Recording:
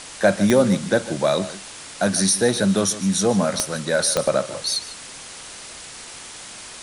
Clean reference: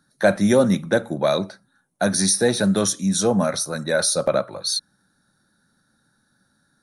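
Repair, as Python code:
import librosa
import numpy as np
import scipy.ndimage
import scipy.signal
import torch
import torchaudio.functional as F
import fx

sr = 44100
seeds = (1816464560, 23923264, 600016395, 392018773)

y = fx.fix_declick_ar(x, sr, threshold=10.0)
y = fx.noise_reduce(y, sr, print_start_s=5.85, print_end_s=6.35, reduce_db=28.0)
y = fx.fix_echo_inverse(y, sr, delay_ms=149, level_db=-15.5)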